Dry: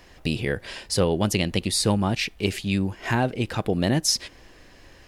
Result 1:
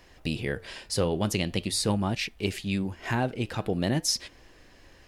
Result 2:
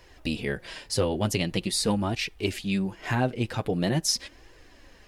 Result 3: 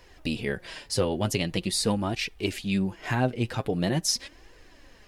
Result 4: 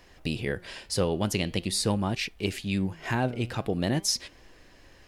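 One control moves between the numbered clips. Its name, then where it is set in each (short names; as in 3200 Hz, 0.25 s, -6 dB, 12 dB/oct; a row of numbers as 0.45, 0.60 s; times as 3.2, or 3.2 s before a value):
flange, regen: -87, -19, +31, +91%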